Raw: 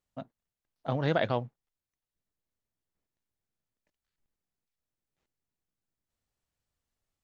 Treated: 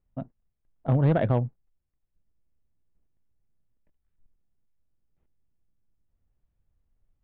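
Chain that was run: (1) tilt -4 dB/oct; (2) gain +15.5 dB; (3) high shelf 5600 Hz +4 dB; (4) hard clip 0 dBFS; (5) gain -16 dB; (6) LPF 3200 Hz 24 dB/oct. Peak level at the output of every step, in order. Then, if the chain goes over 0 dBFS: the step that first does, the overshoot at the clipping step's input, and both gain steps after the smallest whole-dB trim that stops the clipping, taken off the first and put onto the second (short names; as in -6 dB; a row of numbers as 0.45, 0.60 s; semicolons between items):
-11.5, +4.0, +4.0, 0.0, -16.0, -15.5 dBFS; step 2, 4.0 dB; step 2 +11.5 dB, step 5 -12 dB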